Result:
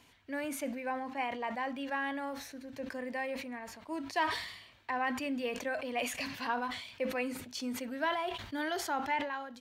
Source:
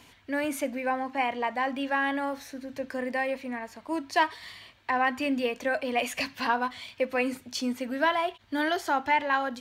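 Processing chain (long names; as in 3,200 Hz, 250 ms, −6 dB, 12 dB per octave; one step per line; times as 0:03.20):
fade-out on the ending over 0.51 s
level that may fall only so fast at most 64 dB per second
level −8 dB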